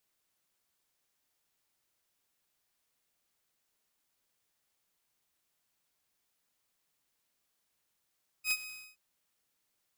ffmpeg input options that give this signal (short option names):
-f lavfi -i "aevalsrc='0.0668*(2*mod(2520*t,1)-1)':d=0.522:s=44100,afade=t=in:d=0.076,afade=t=out:st=0.076:d=0.048:silence=0.158,afade=t=out:st=0.22:d=0.302"